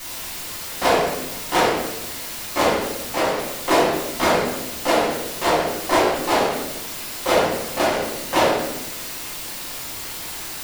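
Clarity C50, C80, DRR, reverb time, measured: 1.0 dB, 4.5 dB, −9.0 dB, 0.95 s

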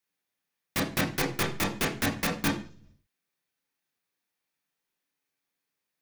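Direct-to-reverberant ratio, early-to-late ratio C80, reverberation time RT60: 0.0 dB, 14.0 dB, 0.45 s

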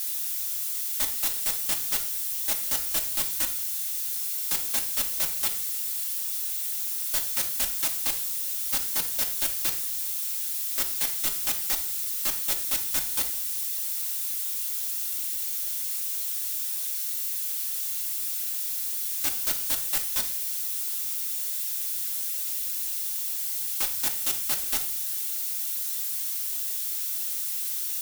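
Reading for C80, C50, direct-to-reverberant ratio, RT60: 15.0 dB, 10.5 dB, 1.0 dB, 0.60 s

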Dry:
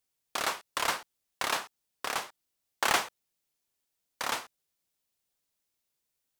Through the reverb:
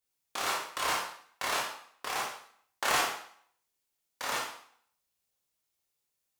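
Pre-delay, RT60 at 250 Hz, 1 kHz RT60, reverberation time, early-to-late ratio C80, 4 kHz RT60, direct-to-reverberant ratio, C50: 16 ms, 0.60 s, 0.60 s, 0.55 s, 7.0 dB, 0.55 s, −4.0 dB, 3.0 dB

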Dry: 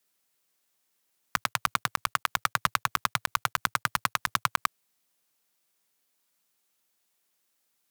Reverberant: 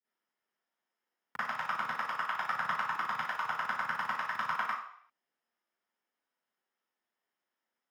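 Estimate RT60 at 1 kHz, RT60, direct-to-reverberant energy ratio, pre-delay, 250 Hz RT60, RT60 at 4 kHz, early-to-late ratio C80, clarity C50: 0.65 s, 0.60 s, −14.0 dB, 38 ms, 0.40 s, 0.60 s, 4.0 dB, −2.5 dB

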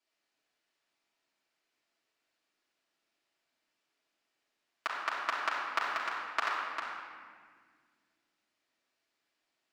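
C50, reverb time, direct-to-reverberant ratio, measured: −0.5 dB, 1.8 s, −8.5 dB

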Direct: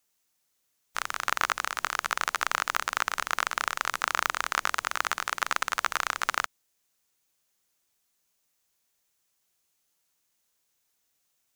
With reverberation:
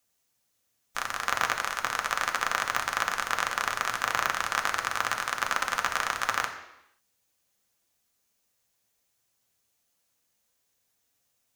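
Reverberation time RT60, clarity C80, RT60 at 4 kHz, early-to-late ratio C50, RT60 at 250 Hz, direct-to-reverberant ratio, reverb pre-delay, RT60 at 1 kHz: 0.85 s, 10.5 dB, 0.85 s, 8.5 dB, 0.85 s, 2.0 dB, 3 ms, 0.85 s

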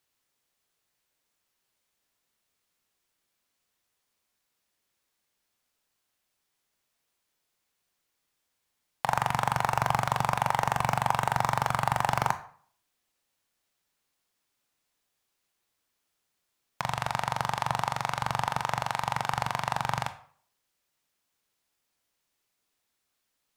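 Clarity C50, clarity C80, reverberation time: 13.5 dB, 17.5 dB, 0.50 s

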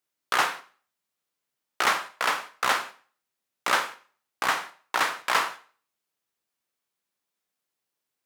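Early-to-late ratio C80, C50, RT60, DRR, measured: 19.5 dB, 15.0 dB, 0.45 s, 10.0 dB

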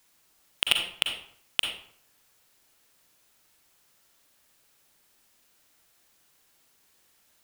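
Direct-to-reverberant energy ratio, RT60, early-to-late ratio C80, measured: 3.0 dB, 0.60 s, 8.5 dB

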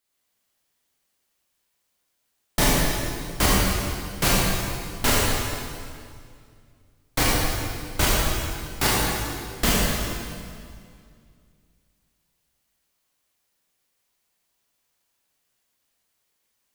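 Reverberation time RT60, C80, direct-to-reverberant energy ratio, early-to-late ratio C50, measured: 2.2 s, −1.5 dB, −6.0 dB, −3.5 dB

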